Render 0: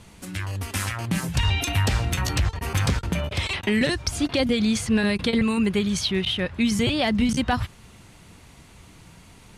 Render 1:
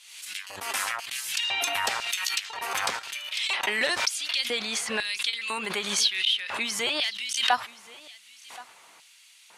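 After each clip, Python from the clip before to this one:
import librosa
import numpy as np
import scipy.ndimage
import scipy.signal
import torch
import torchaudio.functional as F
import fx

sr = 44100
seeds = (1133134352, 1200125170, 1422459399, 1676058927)

y = fx.filter_lfo_highpass(x, sr, shape='square', hz=1.0, low_hz=780.0, high_hz=2900.0, q=1.2)
y = y + 10.0 ** (-20.5 / 20.0) * np.pad(y, (int(1075 * sr / 1000.0), 0))[:len(y)]
y = fx.pre_swell(y, sr, db_per_s=62.0)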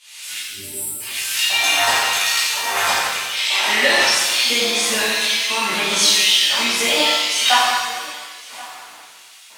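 y = fx.spec_erase(x, sr, start_s=0.38, length_s=0.63, low_hz=450.0, high_hz=7400.0)
y = fx.rev_shimmer(y, sr, seeds[0], rt60_s=1.4, semitones=7, shimmer_db=-8, drr_db=-11.0)
y = y * 10.0 ** (-1.0 / 20.0)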